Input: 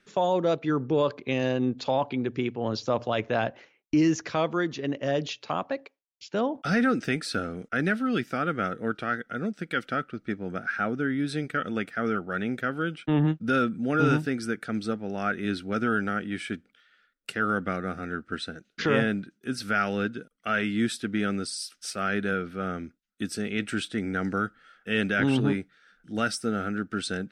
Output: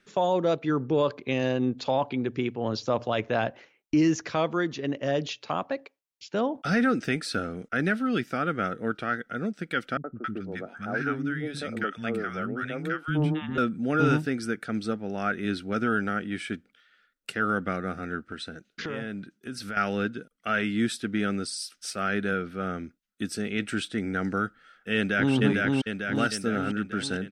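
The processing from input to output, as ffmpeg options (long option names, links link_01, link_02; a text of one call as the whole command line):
ffmpeg -i in.wav -filter_complex "[0:a]asettb=1/sr,asplit=3[link_01][link_02][link_03];[link_01]atrim=end=9.974[link_04];[link_02]atrim=start=9.97:end=13.58,asetpts=PTS-STARTPTS,afade=type=in:duration=0.004:curve=qsin,afade=type=out:start_time=3.606:duration=0.004:curve=qsin,acrossover=split=250|1000[link_05][link_06][link_07];[link_06]adelay=70[link_08];[link_07]adelay=270[link_09];[link_05][link_08][link_09]amix=inputs=3:normalize=0,atrim=end_sample=159201[link_10];[link_03]atrim=start=13.576[link_11];[link_04][link_10]acrossfade=duration=0.004:curve1=hsin:curve2=qsin[link_12];[link_12][link_11]acrossfade=duration=0.004:curve1=qsin:curve2=hsin,asettb=1/sr,asplit=3[link_13][link_14][link_15];[link_13]atrim=end=18.304[link_16];[link_14]atrim=start=18.3:end=19.77,asetpts=PTS-STARTPTS,afade=type=in:duration=0.004:curve=qsin,afade=type=out:start_time=1.466:duration=0.004:curve=qsin,acompressor=threshold=-33dB:ratio=3:attack=3.2:release=140:knee=1:detection=peak[link_17];[link_15]atrim=start=19.766[link_18];[link_16][link_17]acrossfade=duration=0.004:curve1=hsin:curve2=qsin[link_19];[link_19][link_18]acrossfade=duration=0.004:curve1=qsin:curve2=hsin,asplit=2[link_20][link_21];[link_21]afade=type=in:start_time=24.96:duration=0.01,afade=type=out:start_time=25.36:duration=0.01,aecho=0:1:450|900|1350|1800|2250|2700|3150|3600|4050:0.841395|0.504837|0.302902|0.181741|0.109045|0.0654269|0.0392561|0.0235537|0.0141322[link_22];[link_20][link_22]amix=inputs=2:normalize=0" out.wav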